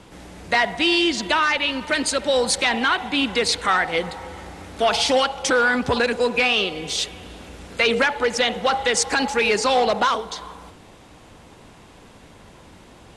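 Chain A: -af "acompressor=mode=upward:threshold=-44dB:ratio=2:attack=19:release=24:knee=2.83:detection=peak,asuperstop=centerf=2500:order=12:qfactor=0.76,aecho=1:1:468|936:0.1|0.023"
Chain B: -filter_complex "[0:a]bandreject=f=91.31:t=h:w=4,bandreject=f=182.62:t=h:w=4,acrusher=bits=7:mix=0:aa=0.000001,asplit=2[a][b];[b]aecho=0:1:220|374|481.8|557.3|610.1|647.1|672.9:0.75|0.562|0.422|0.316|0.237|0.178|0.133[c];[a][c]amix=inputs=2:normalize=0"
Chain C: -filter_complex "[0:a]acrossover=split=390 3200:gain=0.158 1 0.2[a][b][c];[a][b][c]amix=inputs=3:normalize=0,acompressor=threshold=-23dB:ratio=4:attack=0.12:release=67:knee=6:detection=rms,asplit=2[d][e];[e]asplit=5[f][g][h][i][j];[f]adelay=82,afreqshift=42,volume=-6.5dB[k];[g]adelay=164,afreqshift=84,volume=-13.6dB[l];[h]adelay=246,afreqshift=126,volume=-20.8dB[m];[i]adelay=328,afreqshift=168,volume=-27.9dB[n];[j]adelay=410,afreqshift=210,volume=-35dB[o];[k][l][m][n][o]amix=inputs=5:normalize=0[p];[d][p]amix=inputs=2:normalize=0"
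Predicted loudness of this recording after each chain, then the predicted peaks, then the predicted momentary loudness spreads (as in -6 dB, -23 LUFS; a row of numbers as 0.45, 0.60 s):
-23.0, -17.0, -28.0 LUFS; -8.0, -3.0, -16.0 dBFS; 16, 8, 12 LU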